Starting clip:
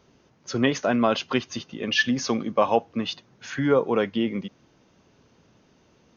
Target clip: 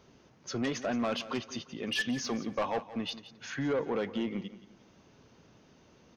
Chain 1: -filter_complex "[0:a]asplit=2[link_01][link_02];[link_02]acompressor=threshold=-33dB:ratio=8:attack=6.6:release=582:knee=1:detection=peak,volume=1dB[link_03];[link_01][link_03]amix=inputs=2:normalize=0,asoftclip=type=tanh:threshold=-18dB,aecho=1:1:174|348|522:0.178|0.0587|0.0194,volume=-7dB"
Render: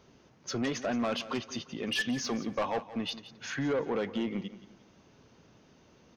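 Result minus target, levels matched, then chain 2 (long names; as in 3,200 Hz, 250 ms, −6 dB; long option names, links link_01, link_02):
downward compressor: peak gain reduction −9.5 dB
-filter_complex "[0:a]asplit=2[link_01][link_02];[link_02]acompressor=threshold=-44dB:ratio=8:attack=6.6:release=582:knee=1:detection=peak,volume=1dB[link_03];[link_01][link_03]amix=inputs=2:normalize=0,asoftclip=type=tanh:threshold=-18dB,aecho=1:1:174|348|522:0.178|0.0587|0.0194,volume=-7dB"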